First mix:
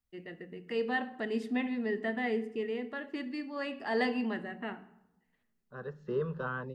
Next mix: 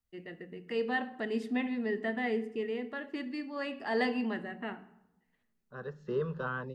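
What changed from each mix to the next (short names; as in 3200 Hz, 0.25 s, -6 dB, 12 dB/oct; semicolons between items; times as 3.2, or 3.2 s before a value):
second voice: add high shelf 4000 Hz +6.5 dB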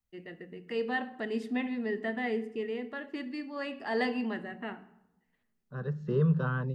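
second voice: add bell 150 Hz +14.5 dB 1.1 oct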